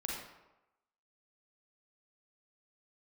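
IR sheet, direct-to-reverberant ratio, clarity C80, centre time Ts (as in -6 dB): -3.0 dB, 3.5 dB, 64 ms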